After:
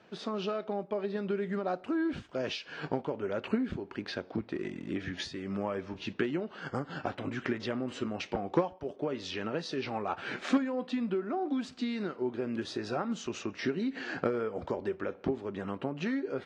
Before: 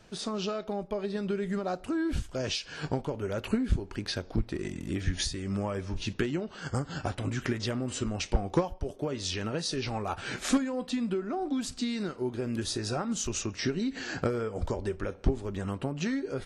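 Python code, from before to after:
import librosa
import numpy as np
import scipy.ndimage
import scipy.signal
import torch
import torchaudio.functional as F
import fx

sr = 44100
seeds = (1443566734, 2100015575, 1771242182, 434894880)

y = fx.bandpass_edges(x, sr, low_hz=200.0, high_hz=3000.0)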